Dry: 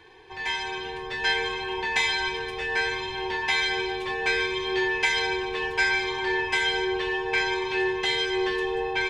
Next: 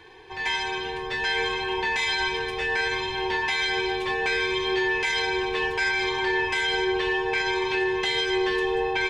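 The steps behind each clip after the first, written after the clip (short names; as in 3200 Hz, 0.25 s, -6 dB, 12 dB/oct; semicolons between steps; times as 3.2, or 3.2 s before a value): limiter -19 dBFS, peak gain reduction 8.5 dB; gain +3 dB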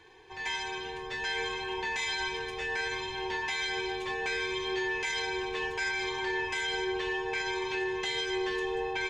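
bell 6700 Hz +8 dB 0.34 oct; gain -7.5 dB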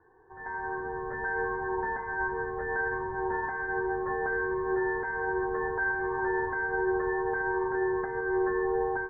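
steep low-pass 1700 Hz 96 dB/oct; AGC gain up to 9 dB; gain -4 dB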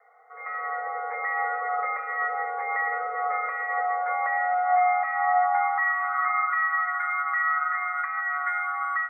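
high-pass sweep 130 Hz -> 1000 Hz, 3.58–6.83; frequency shift +350 Hz; gain +3 dB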